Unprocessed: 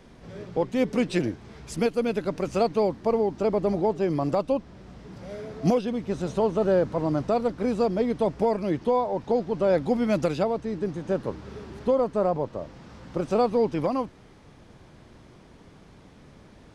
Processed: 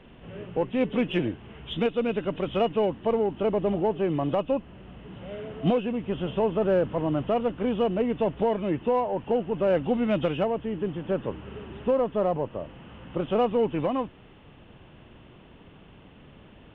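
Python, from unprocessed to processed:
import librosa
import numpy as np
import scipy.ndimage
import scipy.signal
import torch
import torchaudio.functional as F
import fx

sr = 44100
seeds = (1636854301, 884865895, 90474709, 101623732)

p1 = fx.freq_compress(x, sr, knee_hz=2500.0, ratio=4.0)
p2 = 10.0 ** (-24.5 / 20.0) * np.tanh(p1 / 10.0 ** (-24.5 / 20.0))
p3 = p1 + F.gain(torch.from_numpy(p2), -9.0).numpy()
y = F.gain(torch.from_numpy(p3), -2.5).numpy()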